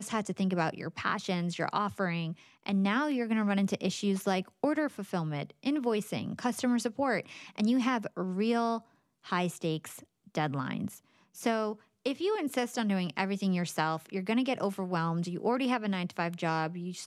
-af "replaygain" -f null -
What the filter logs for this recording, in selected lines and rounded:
track_gain = +12.5 dB
track_peak = 0.135